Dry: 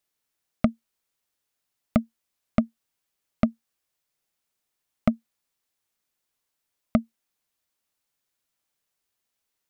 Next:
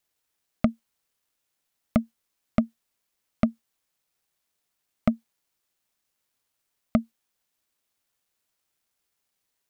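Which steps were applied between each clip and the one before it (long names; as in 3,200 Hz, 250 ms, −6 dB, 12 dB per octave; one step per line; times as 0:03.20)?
in parallel at −1 dB: brickwall limiter −16.5 dBFS, peak gain reduction 9 dB
on the sum: bit-depth reduction 12 bits, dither none
level −3.5 dB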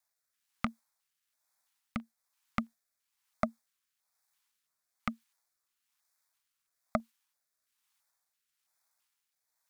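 rotating-speaker cabinet horn 1.1 Hz
auto-filter notch square 1.5 Hz 640–2,900 Hz
low shelf with overshoot 560 Hz −12 dB, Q 1.5
level +1.5 dB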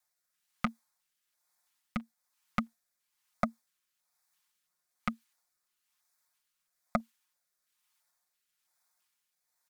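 comb filter 5.6 ms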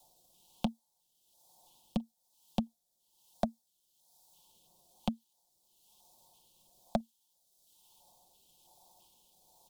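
elliptic band-stop filter 870–3,200 Hz, stop band 50 dB
multiband upward and downward compressor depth 70%
level +5 dB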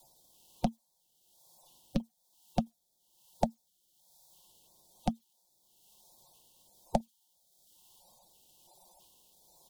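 spectral magnitudes quantised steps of 30 dB
level +3.5 dB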